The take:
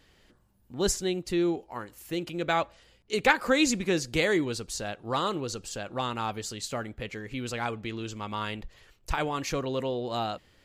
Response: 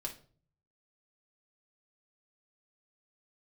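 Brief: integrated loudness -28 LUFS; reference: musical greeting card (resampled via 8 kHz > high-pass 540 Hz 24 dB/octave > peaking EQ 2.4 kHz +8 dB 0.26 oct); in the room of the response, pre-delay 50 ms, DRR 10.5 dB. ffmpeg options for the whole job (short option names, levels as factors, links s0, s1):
-filter_complex "[0:a]asplit=2[s0][s1];[1:a]atrim=start_sample=2205,adelay=50[s2];[s1][s2]afir=irnorm=-1:irlink=0,volume=0.335[s3];[s0][s3]amix=inputs=2:normalize=0,aresample=8000,aresample=44100,highpass=f=540:w=0.5412,highpass=f=540:w=1.3066,equalizer=f=2400:t=o:w=0.26:g=8,volume=1.41"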